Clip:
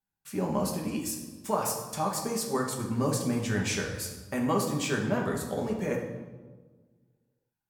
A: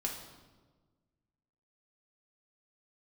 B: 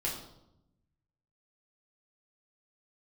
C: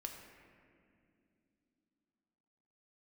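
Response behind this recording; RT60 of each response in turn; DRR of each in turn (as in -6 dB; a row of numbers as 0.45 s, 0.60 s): A; 1.4 s, 0.85 s, no single decay rate; -1.0 dB, -5.0 dB, 2.0 dB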